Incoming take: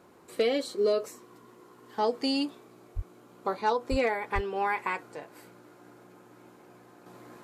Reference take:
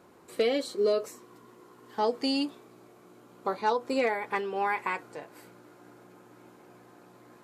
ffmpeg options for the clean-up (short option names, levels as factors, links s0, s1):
-filter_complex "[0:a]asplit=3[s0][s1][s2];[s0]afade=t=out:st=2.95:d=0.02[s3];[s1]highpass=f=140:w=0.5412,highpass=f=140:w=1.3066,afade=t=in:st=2.95:d=0.02,afade=t=out:st=3.07:d=0.02[s4];[s2]afade=t=in:st=3.07:d=0.02[s5];[s3][s4][s5]amix=inputs=3:normalize=0,asplit=3[s6][s7][s8];[s6]afade=t=out:st=3.9:d=0.02[s9];[s7]highpass=f=140:w=0.5412,highpass=f=140:w=1.3066,afade=t=in:st=3.9:d=0.02,afade=t=out:st=4.02:d=0.02[s10];[s8]afade=t=in:st=4.02:d=0.02[s11];[s9][s10][s11]amix=inputs=3:normalize=0,asplit=3[s12][s13][s14];[s12]afade=t=out:st=4.34:d=0.02[s15];[s13]highpass=f=140:w=0.5412,highpass=f=140:w=1.3066,afade=t=in:st=4.34:d=0.02,afade=t=out:st=4.46:d=0.02[s16];[s14]afade=t=in:st=4.46:d=0.02[s17];[s15][s16][s17]amix=inputs=3:normalize=0,asetnsamples=n=441:p=0,asendcmd='7.06 volume volume -5dB',volume=1"